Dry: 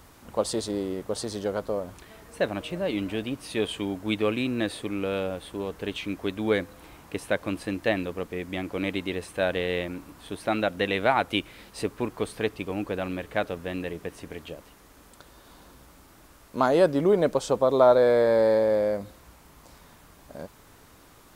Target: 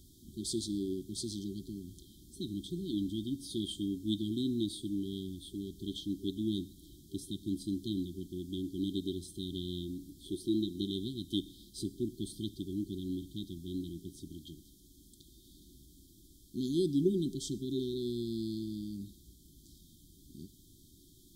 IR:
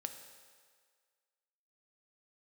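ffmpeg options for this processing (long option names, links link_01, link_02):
-filter_complex "[0:a]asettb=1/sr,asplit=3[link_01][link_02][link_03];[link_01]atrim=end=10.224[link_04];[link_02]atrim=start=10.22:end=10.85,asetpts=PTS-STARTPTS,afade=type=in:duration=0.004:curve=qsin,afade=type=out:start_time=0.626:duration=0.004:curve=qsin,equalizer=frequency=350:width=5.6:gain=11[link_05];[link_03]atrim=start=10.846[link_06];[link_04][link_05]acrossfade=duration=0.004:curve1=hsin:curve2=qsin[link_07];[link_07][link_06]acrossfade=duration=0.004:curve1=qsin:curve2=hsin,asplit=2[link_08][link_09];[1:a]atrim=start_sample=2205,atrim=end_sample=6174[link_10];[link_09][link_10]afir=irnorm=-1:irlink=0,volume=-1.5dB[link_11];[link_08][link_11]amix=inputs=2:normalize=0,afftfilt=real='re*(1-between(b*sr/4096,390,3100))':imag='im*(1-between(b*sr/4096,390,3100))':win_size=4096:overlap=0.75,volume=-8.5dB"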